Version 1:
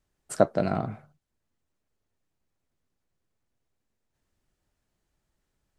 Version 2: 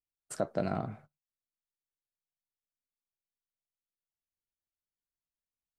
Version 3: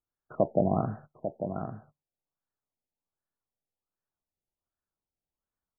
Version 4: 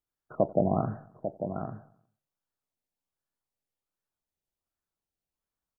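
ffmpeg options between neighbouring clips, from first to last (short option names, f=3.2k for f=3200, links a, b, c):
-af "agate=range=-22dB:threshold=-48dB:ratio=16:detection=peak,alimiter=limit=-12dB:level=0:latency=1:release=65,volume=-5.5dB"
-af "aecho=1:1:846:0.376,afftfilt=real='re*lt(b*sr/1024,860*pow(1900/860,0.5+0.5*sin(2*PI*1.3*pts/sr)))':imag='im*lt(b*sr/1024,860*pow(1900/860,0.5+0.5*sin(2*PI*1.3*pts/sr)))':win_size=1024:overlap=0.75,volume=7dB"
-af "aecho=1:1:90|180|270|360:0.0794|0.0453|0.0258|0.0147"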